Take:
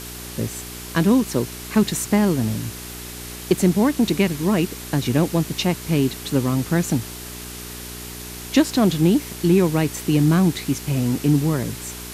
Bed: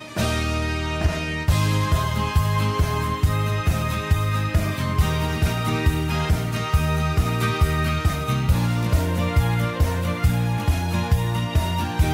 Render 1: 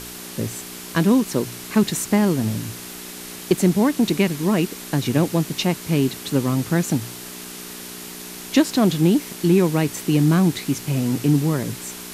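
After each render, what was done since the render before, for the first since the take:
hum removal 60 Hz, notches 2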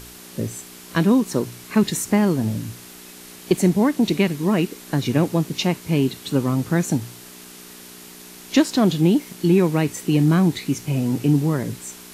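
noise reduction from a noise print 6 dB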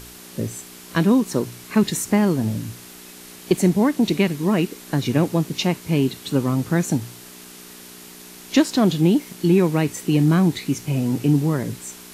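no processing that can be heard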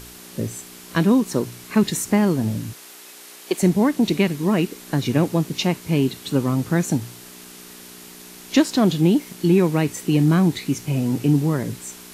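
0:02.73–0:03.63: high-pass filter 420 Hz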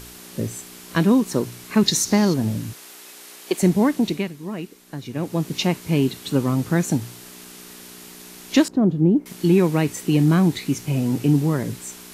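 0:01.86–0:02.34: flat-topped bell 4,900 Hz +11 dB 1 octave
0:03.92–0:05.53: duck −11 dB, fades 0.40 s
0:08.68–0:09.26: drawn EQ curve 330 Hz 0 dB, 1,300 Hz −12 dB, 3,700 Hz −27 dB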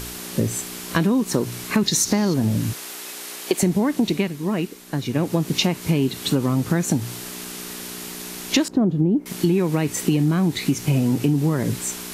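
in parallel at +3 dB: brickwall limiter −12 dBFS, peak gain reduction 8.5 dB
on the sum: downward compressor, threshold −16 dBFS, peak gain reduction 10 dB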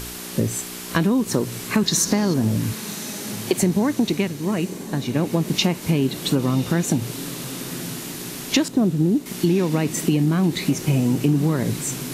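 feedback delay with all-pass diffusion 1,091 ms, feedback 47%, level −13.5 dB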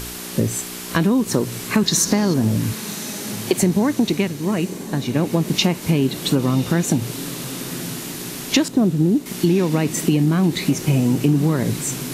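level +2 dB
brickwall limiter −2 dBFS, peak gain reduction 1 dB

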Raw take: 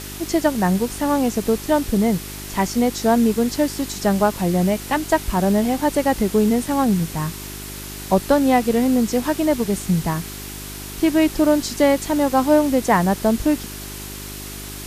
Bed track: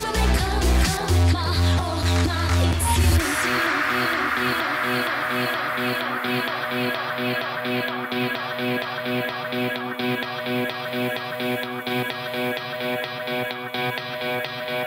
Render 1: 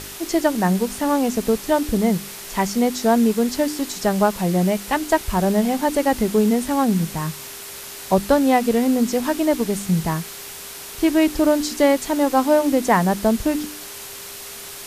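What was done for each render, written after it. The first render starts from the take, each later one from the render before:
hum removal 50 Hz, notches 7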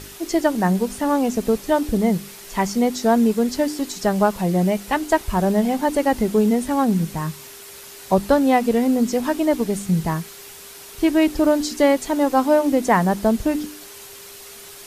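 broadband denoise 6 dB, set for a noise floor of −36 dBFS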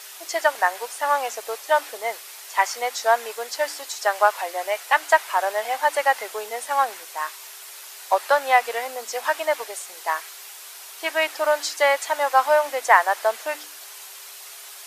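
inverse Chebyshev high-pass filter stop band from 180 Hz, stop band 60 dB
dynamic equaliser 1,700 Hz, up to +7 dB, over −37 dBFS, Q 0.82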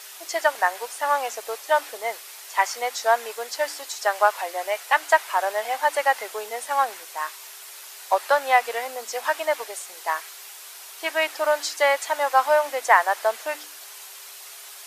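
level −1 dB
brickwall limiter −3 dBFS, peak gain reduction 1 dB

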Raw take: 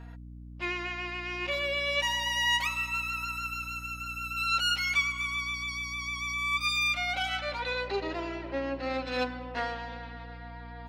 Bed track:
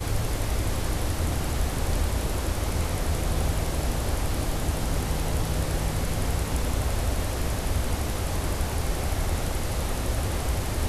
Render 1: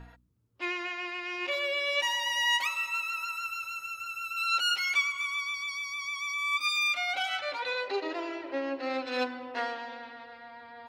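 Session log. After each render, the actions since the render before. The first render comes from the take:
hum removal 60 Hz, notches 5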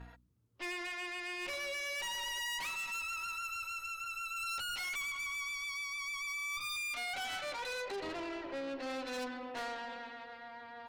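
tube saturation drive 37 dB, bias 0.45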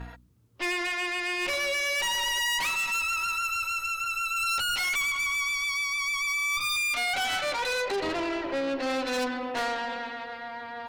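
level +11 dB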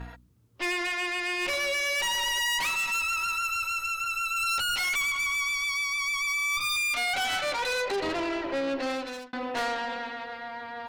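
0:08.81–0:09.33: fade out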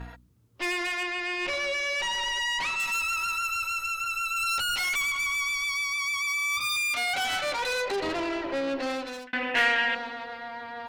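0:01.03–0:02.80: high-frequency loss of the air 74 metres
0:05.92–0:07.25: high-pass filter 58 Hz
0:09.27–0:09.95: flat-topped bell 2,200 Hz +13 dB 1.2 octaves

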